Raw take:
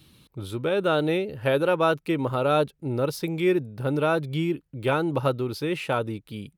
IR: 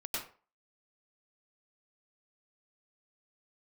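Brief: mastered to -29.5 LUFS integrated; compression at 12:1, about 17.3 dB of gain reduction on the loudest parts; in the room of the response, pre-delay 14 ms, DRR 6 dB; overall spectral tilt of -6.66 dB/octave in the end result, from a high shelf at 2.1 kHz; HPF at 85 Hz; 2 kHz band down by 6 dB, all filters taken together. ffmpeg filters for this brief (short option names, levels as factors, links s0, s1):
-filter_complex "[0:a]highpass=85,equalizer=f=2000:t=o:g=-6.5,highshelf=f=2100:g=-4.5,acompressor=threshold=0.0158:ratio=12,asplit=2[s0][s1];[1:a]atrim=start_sample=2205,adelay=14[s2];[s1][s2]afir=irnorm=-1:irlink=0,volume=0.376[s3];[s0][s3]amix=inputs=2:normalize=0,volume=3.35"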